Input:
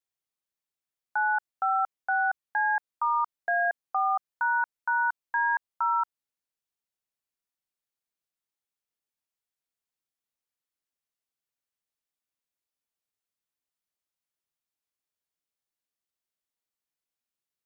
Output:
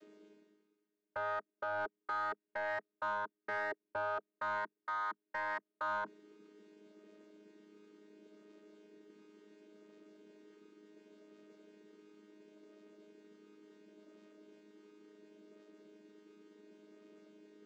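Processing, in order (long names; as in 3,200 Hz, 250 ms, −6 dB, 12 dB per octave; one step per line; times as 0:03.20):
channel vocoder with a chord as carrier bare fifth, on G#3
low shelf with overshoot 600 Hz +10 dB, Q 3
reversed playback
upward compression, threshold −38 dBFS
reversed playback
brickwall limiter −28.5 dBFS, peak gain reduction 10 dB
mid-hump overdrive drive 12 dB, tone 1,200 Hz, clips at −28.5 dBFS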